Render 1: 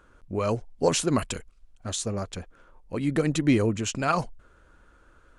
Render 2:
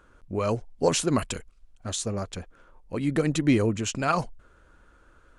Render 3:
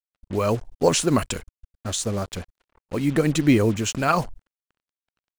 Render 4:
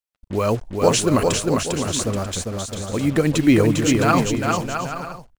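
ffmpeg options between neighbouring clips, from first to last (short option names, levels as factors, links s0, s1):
-af anull
-af "acrusher=bits=6:mix=0:aa=0.5,volume=1.58"
-af "aecho=1:1:400|660|829|938.8|1010:0.631|0.398|0.251|0.158|0.1,volume=1.26"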